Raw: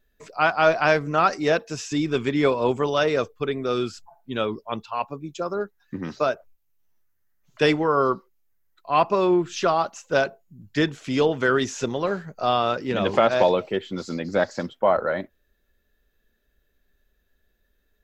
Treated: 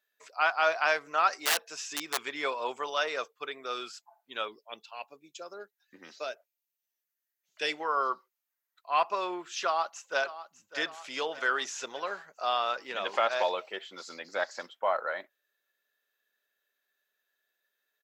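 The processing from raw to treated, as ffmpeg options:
-filter_complex "[0:a]asettb=1/sr,asplit=3[a][b][c];[a]atrim=end=1.404[d];[b]atrim=start=1.4:end=2.19,asetpts=PTS-STARTPTS,afade=t=in:d=0.004:c=qsin,afade=t=out:st=0.786:d=0.004:c=qsin,aeval=exprs='(mod(5.96*val(0)+1,2)-1)/5.96':c=same[e];[c]atrim=start=2.186[f];[d][e]acrossfade=d=0.004:c1=hsin:c2=qsin[g];[g][f]acrossfade=d=0.004:c1=qsin:c2=hsin,asettb=1/sr,asplit=3[h][i][j];[h]atrim=end=4.484[k];[i]atrim=start=4.48:end=7.8,asetpts=PTS-STARTPTS,afade=t=in:d=0.004:c=qsin,afade=t=out:st=3.316:d=0.004:c=qsin,equalizer=f=1.1k:w=1.3:g=-12.5[l];[j]atrim=start=7.796[m];[k][l]acrossfade=d=0.004:c1=hsin:c2=qsin[n];[n][m]acrossfade=d=0.004:c1=qsin:c2=hsin,asplit=2[o][p];[p]afade=t=in:st=9.64:d=0.01,afade=t=out:st=10.79:d=0.01,aecho=0:1:600|1200|1800|2400|3000|3600:0.188365|0.113019|0.0678114|0.0406868|0.0244121|0.0146473[q];[o][q]amix=inputs=2:normalize=0,highpass=830,volume=-4dB"

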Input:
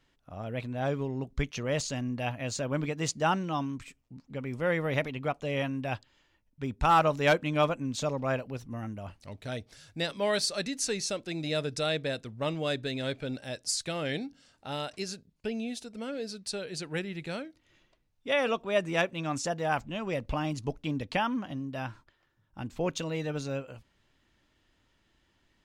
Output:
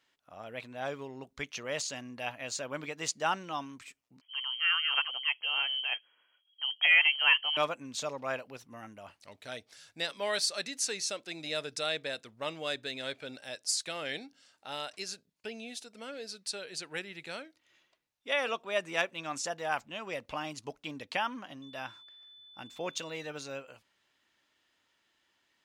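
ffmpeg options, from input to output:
-filter_complex "[0:a]asettb=1/sr,asplit=3[a][b][c];[a]atrim=end=4.214[d];[b]atrim=start=4.21:end=7.57,asetpts=PTS-STARTPTS,afade=t=in:d=0.004:c=qsin,afade=t=out:st=3.356:d=0.004:c=qsin,lowpass=f=2.8k:t=q:w=0.5098,lowpass=f=2.8k:t=q:w=0.6013,lowpass=f=2.8k:t=q:w=0.9,lowpass=f=2.8k:t=q:w=2.563,afreqshift=-3300[e];[c]atrim=start=7.566[f];[d][e]acrossfade=d=0.004:c1=hsin:c2=qsin[g];[g][f]acrossfade=d=0.004:c1=qsin:c2=hsin,asettb=1/sr,asplit=3[h][i][j];[h]atrim=end=21.624[k];[i]atrim=start=21.62:end=23.17,asetpts=PTS-STARTPTS,afade=t=in:d=0.004:c=qsin,afade=t=out:st=1.546:d=0.004:c=qsin,aeval=exprs='val(0)+0.00251*sin(2*PI*3500*n/s)':c=same[l];[j]atrim=start=23.166[m];[k][l]acrossfade=d=0.004:c1=hsin:c2=qsin[n];[n][m]acrossfade=d=0.004:c1=qsin:c2=hsin,highpass=f=900:p=1"

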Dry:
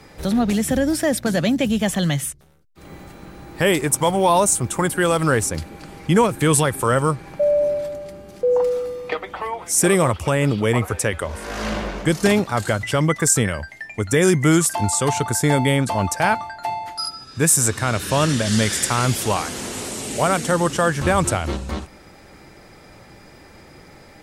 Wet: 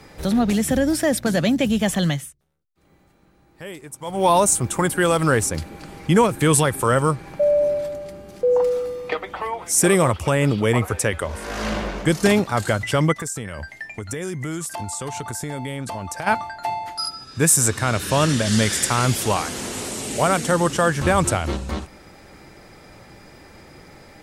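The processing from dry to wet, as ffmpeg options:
-filter_complex "[0:a]asplit=3[a][b][c];[a]afade=t=out:st=13.12:d=0.02[d];[b]acompressor=threshold=-26dB:ratio=6:attack=3.2:release=140:knee=1:detection=peak,afade=t=in:st=13.12:d=0.02,afade=t=out:st=16.26:d=0.02[e];[c]afade=t=in:st=16.26:d=0.02[f];[d][e][f]amix=inputs=3:normalize=0,asplit=3[g][h][i];[g]atrim=end=2.39,asetpts=PTS-STARTPTS,afade=t=out:st=2.09:d=0.3:c=qua:silence=0.125893[j];[h]atrim=start=2.39:end=3.96,asetpts=PTS-STARTPTS,volume=-18dB[k];[i]atrim=start=3.96,asetpts=PTS-STARTPTS,afade=t=in:d=0.3:c=qua:silence=0.125893[l];[j][k][l]concat=n=3:v=0:a=1"

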